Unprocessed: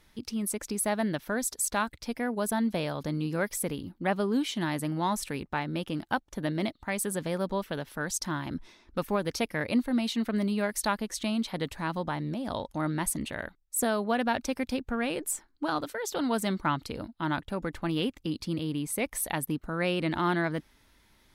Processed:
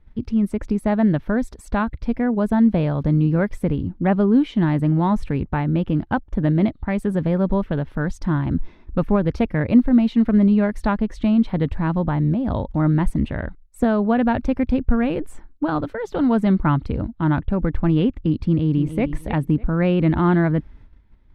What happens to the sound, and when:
18.43–19.03 s: echo throw 300 ms, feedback 25%, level -10.5 dB
whole clip: tone controls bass +1 dB, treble -11 dB; gate -60 dBFS, range -11 dB; RIAA curve playback; trim +5 dB

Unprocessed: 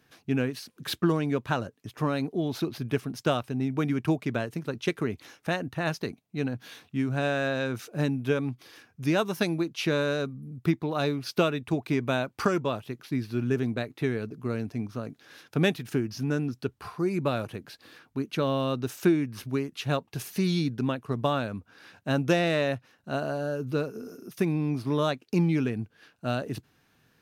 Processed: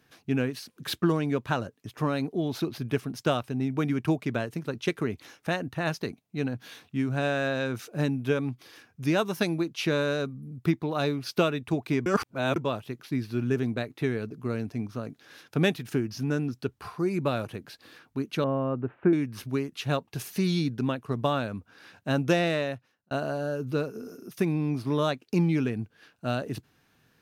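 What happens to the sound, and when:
12.06–12.56 s: reverse
18.44–19.13 s: Bessel low-pass 1.3 kHz, order 8
22.43–23.11 s: fade out linear

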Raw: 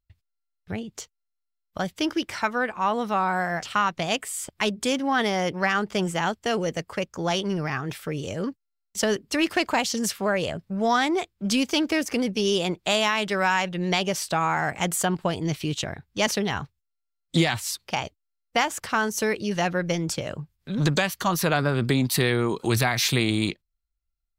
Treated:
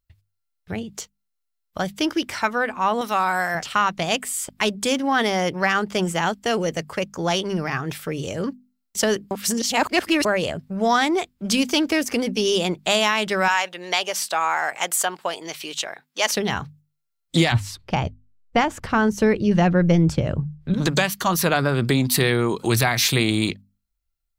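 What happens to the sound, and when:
3.01–3.55 s: tilt EQ +2.5 dB/octave
9.31–10.25 s: reverse
13.48–16.32 s: high-pass 590 Hz
17.52–20.74 s: RIAA curve playback
whole clip: treble shelf 9.5 kHz +4.5 dB; hum notches 50/100/150/200/250 Hz; trim +3 dB

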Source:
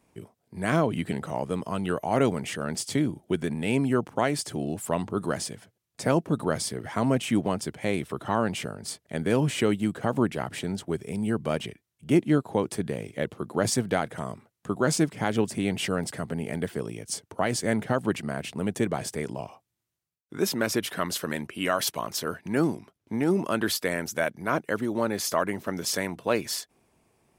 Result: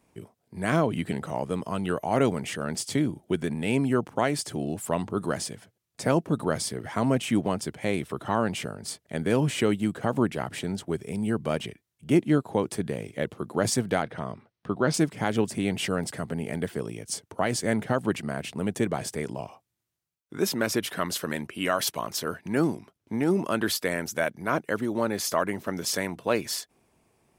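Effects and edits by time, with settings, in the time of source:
14.02–14.94 s: Savitzky-Golay filter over 15 samples

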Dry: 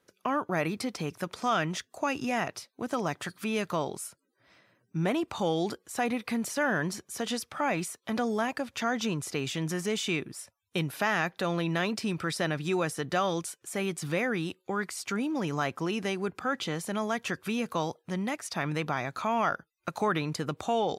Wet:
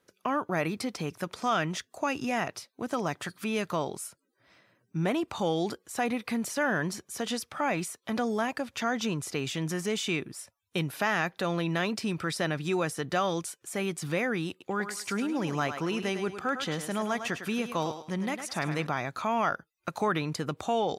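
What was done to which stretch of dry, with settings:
14.50–18.87 s: thinning echo 104 ms, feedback 32%, high-pass 300 Hz, level -8 dB

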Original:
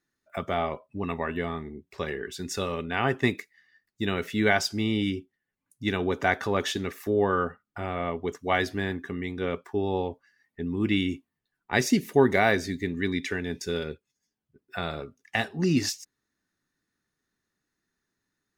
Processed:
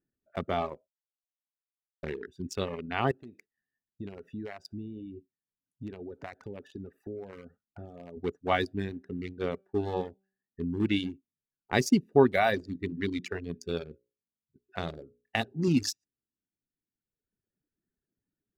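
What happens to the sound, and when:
0.88–2.03 s: mute
3.11–8.17 s: compression 3:1, threshold -36 dBFS
8.88–11.12 s: de-hum 192.9 Hz, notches 32
12.38–15.68 s: hum notches 60/120/180/240/300/360/420/480/540 Hz
whole clip: local Wiener filter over 41 samples; reverb removal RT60 1.4 s; dynamic bell 1.8 kHz, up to -5 dB, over -43 dBFS, Q 1.9

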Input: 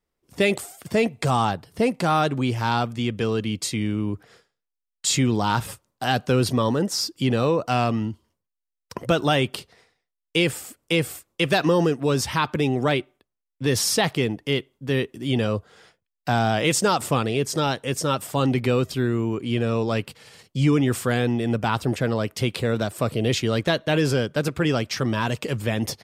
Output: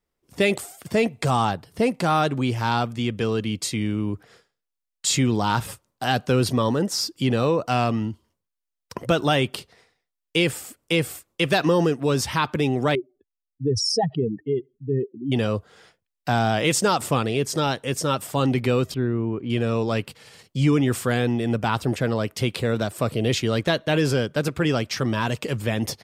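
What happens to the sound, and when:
12.95–15.32 s: spectral contrast enhancement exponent 3.3
18.94–19.50 s: tape spacing loss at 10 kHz 33 dB

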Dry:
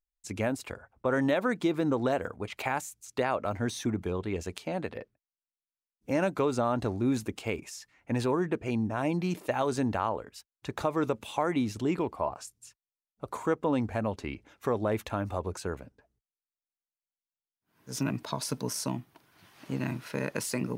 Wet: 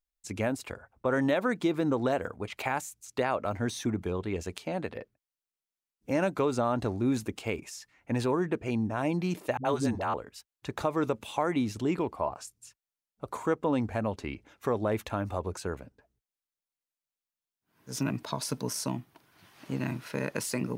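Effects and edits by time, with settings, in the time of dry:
9.57–10.14 s: phase dispersion highs, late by 81 ms, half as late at 340 Hz

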